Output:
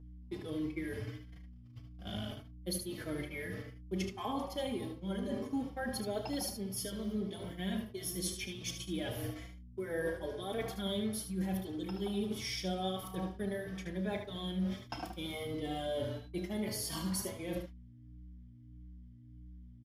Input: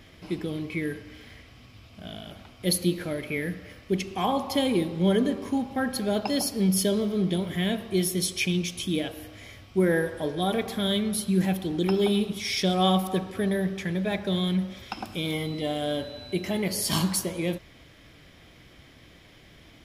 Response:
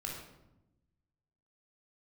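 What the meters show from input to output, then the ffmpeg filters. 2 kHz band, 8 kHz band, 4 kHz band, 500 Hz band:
−11.0 dB, −10.0 dB, −11.5 dB, −11.0 dB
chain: -filter_complex "[0:a]equalizer=frequency=120:width=2:gain=9.5,bandreject=frequency=3900:width=11,areverse,acompressor=threshold=-35dB:ratio=5,areverse,equalizer=frequency=160:width_type=o:width=0.33:gain=-12,equalizer=frequency=2500:width_type=o:width=0.33:gain=-5,equalizer=frequency=8000:width_type=o:width=0.33:gain=-3,agate=range=-36dB:threshold=-42dB:ratio=16:detection=peak,aecho=1:1:32|75:0.224|0.398,aeval=exprs='val(0)+0.00282*(sin(2*PI*60*n/s)+sin(2*PI*2*60*n/s)/2+sin(2*PI*3*60*n/s)/3+sin(2*PI*4*60*n/s)/4+sin(2*PI*5*60*n/s)/5)':channel_layout=same,asplit=2[link_01][link_02];[link_02]adelay=4,afreqshift=1.6[link_03];[link_01][link_03]amix=inputs=2:normalize=1,volume=3dB"

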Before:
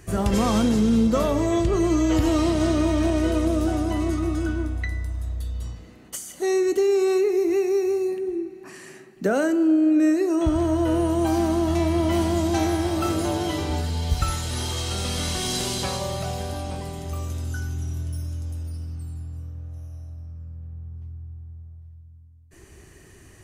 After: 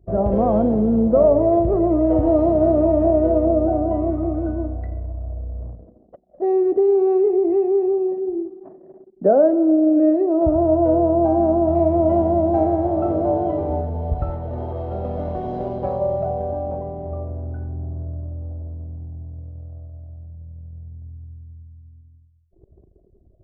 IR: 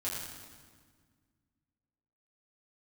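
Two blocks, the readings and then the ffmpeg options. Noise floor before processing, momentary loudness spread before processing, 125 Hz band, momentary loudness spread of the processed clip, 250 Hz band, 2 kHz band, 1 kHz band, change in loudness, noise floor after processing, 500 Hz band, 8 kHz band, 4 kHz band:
−49 dBFS, 18 LU, 0.0 dB, 20 LU, +2.0 dB, below −15 dB, +5.0 dB, +4.0 dB, −54 dBFS, +7.0 dB, below −40 dB, below −30 dB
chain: -af "lowpass=frequency=640:width_type=q:width=4.1,anlmdn=0.631"

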